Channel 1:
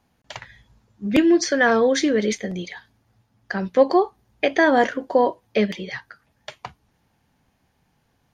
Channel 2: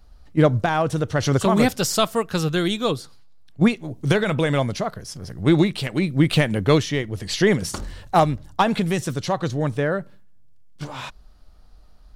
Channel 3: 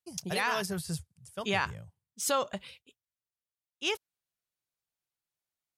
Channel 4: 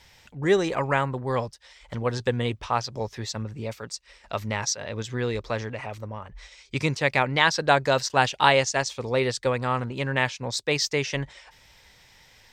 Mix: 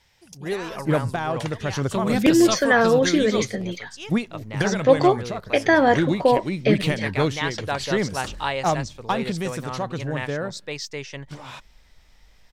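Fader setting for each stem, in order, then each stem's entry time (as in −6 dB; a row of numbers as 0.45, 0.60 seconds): 0.0, −5.5, −7.0, −7.5 decibels; 1.10, 0.50, 0.15, 0.00 seconds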